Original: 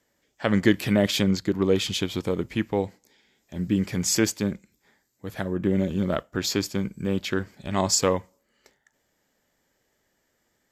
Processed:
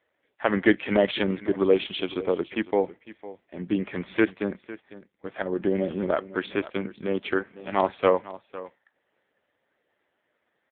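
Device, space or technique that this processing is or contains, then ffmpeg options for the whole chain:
satellite phone: -af "highpass=340,lowpass=3100,aecho=1:1:504:0.141,volume=4.5dB" -ar 8000 -c:a libopencore_amrnb -b:a 5900

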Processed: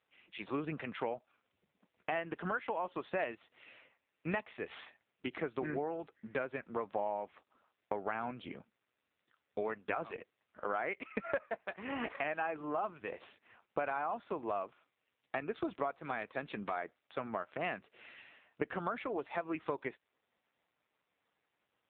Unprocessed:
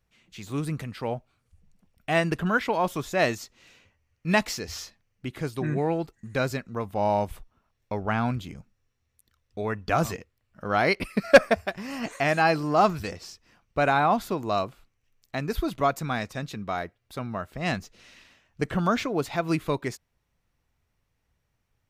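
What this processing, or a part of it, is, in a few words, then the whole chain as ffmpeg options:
voicemail: -af "highpass=360,lowpass=3200,acompressor=threshold=-37dB:ratio=8,volume=4.5dB" -ar 8000 -c:a libopencore_amrnb -b:a 5900

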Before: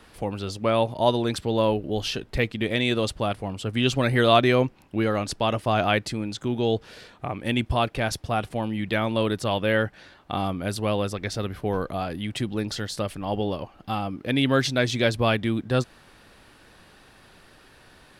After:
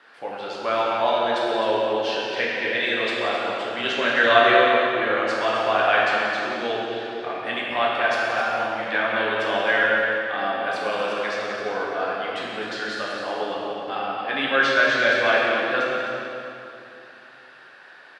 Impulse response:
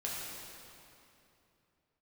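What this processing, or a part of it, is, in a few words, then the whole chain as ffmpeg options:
station announcement: -filter_complex "[0:a]highpass=470,lowpass=4300,equalizer=frequency=1600:width_type=o:width=0.52:gain=9,aecho=1:1:180.8|259.5:0.251|0.355[link_01];[1:a]atrim=start_sample=2205[link_02];[link_01][link_02]afir=irnorm=-1:irlink=0"

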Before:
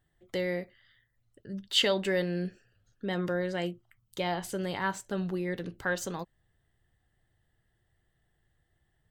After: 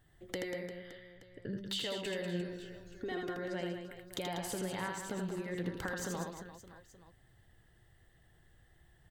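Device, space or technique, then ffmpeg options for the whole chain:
serial compression, peaks first: -filter_complex "[0:a]acompressor=threshold=-40dB:ratio=4,acompressor=threshold=-45dB:ratio=2.5,asettb=1/sr,asplit=3[link_01][link_02][link_03];[link_01]atrim=end=0.594[link_04];[link_02]atrim=start=0.59:end=1.53,asetpts=PTS-STARTPTS,afade=type=in:duration=0.004:curve=qsin,afade=type=out:start_time=0.936:duration=0.004:curve=qsin,lowpass=4000[link_05];[link_03]atrim=start=1.526[link_06];[link_04][link_05]acrossfade=duration=0.004:curve1=hsin:curve2=qsin[link_07];[link_07][link_06]acrossfade=duration=0.004:curve1=qsin:curve2=hsin,asettb=1/sr,asplit=3[link_08][link_09][link_10];[link_08]atrim=end=2.404[link_11];[link_09]atrim=start=2.4:end=3.37,asetpts=PTS-STARTPTS,afade=type=in:duration=0.004:curve=qsin,afade=type=out:start_time=0.966:duration=0.004:curve=qsin,aecho=1:1:2.7:0.77,atrim=end_sample=42777[link_12];[link_10]atrim=start=3.366[link_13];[link_11][link_12]acrossfade=duration=0.004:curve1=hsin:curve2=qsin[link_14];[link_14][link_13]acrossfade=duration=0.004:curve1=qsin:curve2=hsin,aecho=1:1:80|192|348.8|568.3|875.6:0.631|0.398|0.251|0.158|0.1,volume=6.5dB"

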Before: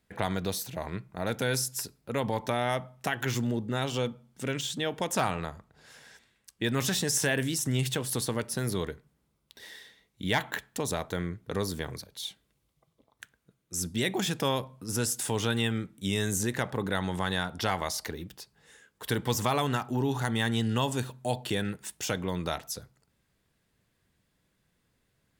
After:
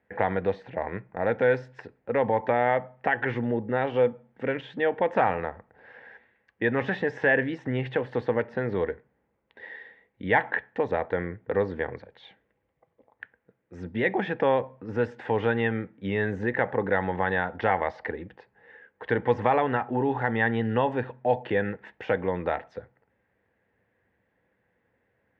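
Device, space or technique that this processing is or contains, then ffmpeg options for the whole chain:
bass cabinet: -af "highpass=83,equalizer=frequency=150:width_type=q:width=4:gain=-10,equalizer=frequency=500:width_type=q:width=4:gain=9,equalizer=frequency=820:width_type=q:width=4:gain=7,equalizer=frequency=1200:width_type=q:width=4:gain=-4,equalizer=frequency=1800:width_type=q:width=4:gain=8,lowpass=frequency=2300:width=0.5412,lowpass=frequency=2300:width=1.3066,volume=2dB"

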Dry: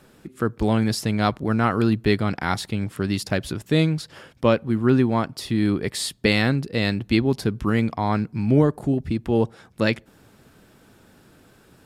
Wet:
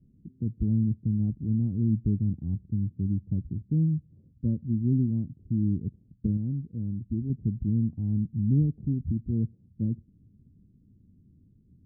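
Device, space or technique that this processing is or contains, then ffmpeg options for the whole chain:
the neighbour's flat through the wall: -filter_complex "[0:a]lowpass=frequency=230:width=0.5412,lowpass=frequency=230:width=1.3066,equalizer=frequency=86:width_type=o:width=0.42:gain=6,asettb=1/sr,asplit=3[link_01][link_02][link_03];[link_01]atrim=end=6.374[link_04];[link_02]atrim=start=6.37:end=7.3,asetpts=PTS-STARTPTS,afade=type=in:duration=0.004:curve=qsin,afade=type=out:start_time=0.926:duration=0.004:curve=qsin,tiltshelf=frequency=850:gain=-5[link_05];[link_03]atrim=start=7.296[link_06];[link_04][link_05]acrossfade=duration=0.004:curve1=hsin:curve2=qsin[link_07];[link_07][link_06]acrossfade=duration=0.004:curve1=qsin:curve2=hsin,volume=-2.5dB"

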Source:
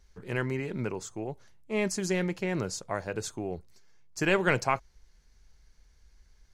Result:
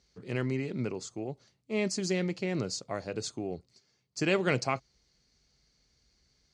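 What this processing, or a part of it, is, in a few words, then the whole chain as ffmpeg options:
car door speaker: -af "highpass=100,equalizer=frequency=130:width_type=q:width=4:gain=3,equalizer=frequency=260:width_type=q:width=4:gain=4,equalizer=frequency=940:width_type=q:width=4:gain=-7,equalizer=frequency=1600:width_type=q:width=4:gain=-7,equalizer=frequency=4500:width_type=q:width=4:gain=8,lowpass=frequency=8400:width=0.5412,lowpass=frequency=8400:width=1.3066,volume=-1.5dB"

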